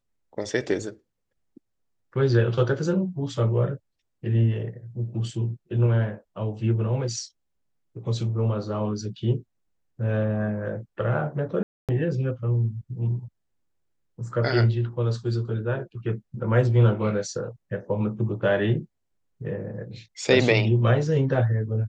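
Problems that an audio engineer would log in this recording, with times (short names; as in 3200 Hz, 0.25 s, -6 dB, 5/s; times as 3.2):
11.63–11.89 gap 0.257 s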